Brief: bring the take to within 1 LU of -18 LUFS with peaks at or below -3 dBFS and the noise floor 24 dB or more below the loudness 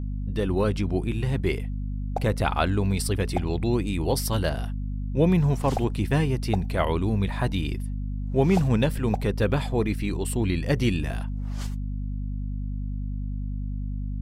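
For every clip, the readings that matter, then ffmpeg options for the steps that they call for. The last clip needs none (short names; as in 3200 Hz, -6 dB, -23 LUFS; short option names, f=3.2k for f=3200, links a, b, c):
hum 50 Hz; harmonics up to 250 Hz; hum level -27 dBFS; loudness -26.5 LUFS; peak -8.5 dBFS; loudness target -18.0 LUFS
-> -af "bandreject=f=50:t=h:w=6,bandreject=f=100:t=h:w=6,bandreject=f=150:t=h:w=6,bandreject=f=200:t=h:w=6,bandreject=f=250:t=h:w=6"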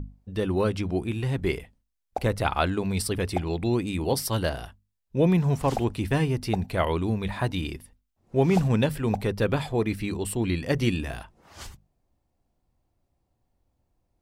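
hum none; loudness -26.5 LUFS; peak -9.5 dBFS; loudness target -18.0 LUFS
-> -af "volume=8.5dB,alimiter=limit=-3dB:level=0:latency=1"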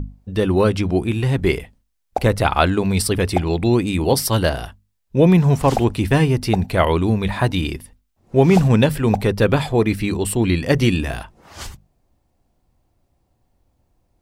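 loudness -18.0 LUFS; peak -3.0 dBFS; noise floor -69 dBFS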